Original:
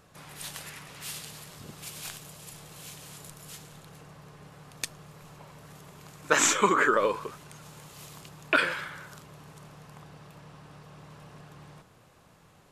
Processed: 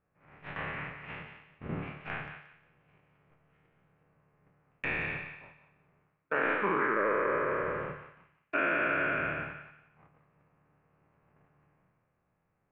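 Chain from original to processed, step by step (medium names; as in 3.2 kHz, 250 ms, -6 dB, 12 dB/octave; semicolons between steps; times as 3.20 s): spectral sustain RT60 1.92 s; steep low-pass 2.5 kHz 48 dB/octave; peaking EQ 1 kHz -2.5 dB 0.2 oct; reverse; compression 5:1, threshold -34 dBFS, peak gain reduction 17.5 dB; reverse; gate -42 dBFS, range -28 dB; bass shelf 140 Hz +4 dB; hum notches 50/100/150 Hz; on a send: thinning echo 178 ms, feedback 30%, high-pass 1.2 kHz, level -7.5 dB; on the sum: trim +5.5 dB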